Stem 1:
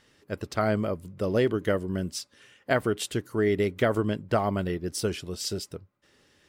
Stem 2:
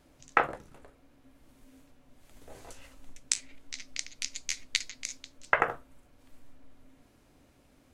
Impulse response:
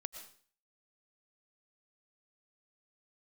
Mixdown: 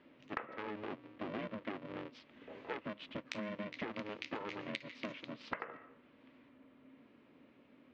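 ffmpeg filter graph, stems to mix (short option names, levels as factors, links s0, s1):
-filter_complex "[0:a]lowpass=5900,equalizer=f=190:t=o:w=0.59:g=-12,aeval=exprs='val(0)*sgn(sin(2*PI*210*n/s))':c=same,volume=0.422,asplit=2[s0][s1];[1:a]volume=0.891,asplit=2[s2][s3];[s3]volume=0.473[s4];[s1]apad=whole_len=350071[s5];[s2][s5]sidechaincompress=threshold=0.02:ratio=8:attack=16:release=351[s6];[2:a]atrim=start_sample=2205[s7];[s4][s7]afir=irnorm=-1:irlink=0[s8];[s0][s6][s8]amix=inputs=3:normalize=0,highpass=210,equalizer=f=230:t=q:w=4:g=5,equalizer=f=750:t=q:w=4:g=-9,equalizer=f=1500:t=q:w=4:g=-4,lowpass=f=3000:w=0.5412,lowpass=f=3000:w=1.3066,acompressor=threshold=0.0126:ratio=10"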